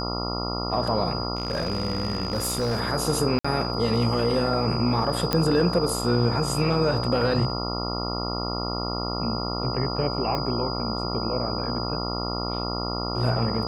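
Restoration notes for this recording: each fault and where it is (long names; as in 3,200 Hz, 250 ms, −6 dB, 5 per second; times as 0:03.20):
mains buzz 60 Hz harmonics 23 −30 dBFS
whistle 4,900 Hz −32 dBFS
0:01.35–0:02.80: clipping −21 dBFS
0:03.39–0:03.44: drop-out 55 ms
0:05.33: click −8 dBFS
0:10.35: click −15 dBFS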